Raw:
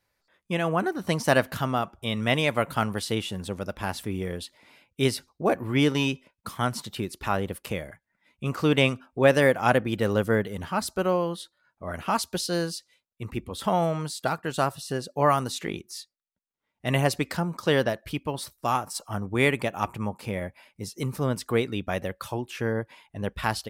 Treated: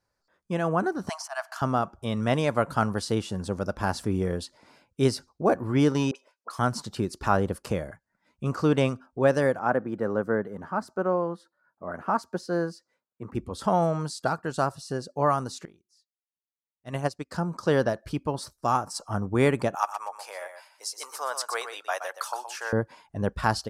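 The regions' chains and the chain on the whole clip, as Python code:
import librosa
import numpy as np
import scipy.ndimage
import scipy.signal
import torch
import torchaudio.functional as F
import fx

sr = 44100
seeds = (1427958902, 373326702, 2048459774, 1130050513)

y = fx.chain(x, sr, fx.auto_swell(attack_ms=205.0),
    fx.cheby1_highpass(hz=650.0, order=8),
    fx.notch(hz=3800.0, q=11.0), at=(1.09, 1.62))
y = fx.chain(y, sr, fx.highpass(hz=430.0, slope=24),
    fx.dispersion(late='highs', ms=43.0, hz=1400.0), at=(6.11, 6.59))
y = fx.chain(y, sr, fx.highpass(hz=170.0, slope=12),
    fx.band_shelf(hz=5700.0, db=-13.5, octaves=2.5), at=(9.59, 13.35))
y = fx.chain(y, sr, fx.peak_eq(hz=4800.0, db=3.5, octaves=2.9),
    fx.upward_expand(threshold_db=-34.0, expansion=2.5), at=(15.65, 17.32))
y = fx.chain(y, sr, fx.cheby2_highpass(hz=160.0, order=4, stop_db=70),
    fx.high_shelf(hz=7800.0, db=9.5),
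    fx.echo_single(ms=122, db=-9.0), at=(19.75, 22.73))
y = scipy.signal.sosfilt(scipy.signal.butter(2, 7900.0, 'lowpass', fs=sr, output='sos'), y)
y = fx.band_shelf(y, sr, hz=2700.0, db=-9.5, octaves=1.2)
y = fx.rider(y, sr, range_db=5, speed_s=2.0)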